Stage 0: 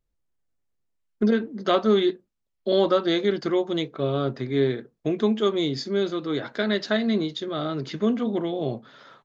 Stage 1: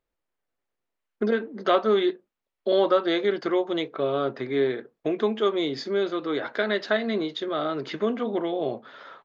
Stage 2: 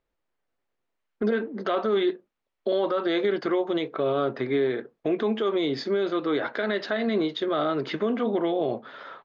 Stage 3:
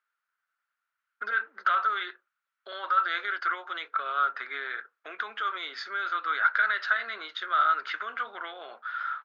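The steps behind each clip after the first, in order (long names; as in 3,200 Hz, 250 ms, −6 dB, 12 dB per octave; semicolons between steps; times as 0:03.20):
bass and treble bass −15 dB, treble −12 dB; in parallel at −1 dB: downward compressor, threshold −33 dBFS, peak gain reduction 15.5 dB
brickwall limiter −19.5 dBFS, peak gain reduction 10.5 dB; high-frequency loss of the air 90 metres; level +3.5 dB
high-pass with resonance 1,400 Hz, resonance Q 7.6; level −4 dB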